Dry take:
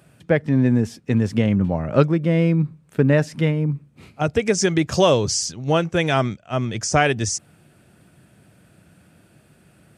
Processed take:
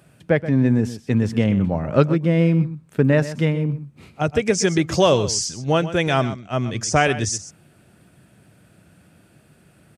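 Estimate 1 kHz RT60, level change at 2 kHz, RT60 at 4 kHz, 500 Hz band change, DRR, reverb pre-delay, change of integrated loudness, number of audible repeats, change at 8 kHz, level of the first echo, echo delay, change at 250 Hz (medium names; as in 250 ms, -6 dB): no reverb, 0.0 dB, no reverb, 0.0 dB, no reverb, no reverb, 0.0 dB, 1, 0.0 dB, -14.0 dB, 127 ms, 0.0 dB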